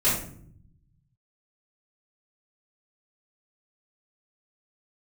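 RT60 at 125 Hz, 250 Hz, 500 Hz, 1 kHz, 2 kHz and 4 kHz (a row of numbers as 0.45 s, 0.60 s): 1.8 s, 1.2 s, 0.70 s, 0.50 s, 0.45 s, 0.35 s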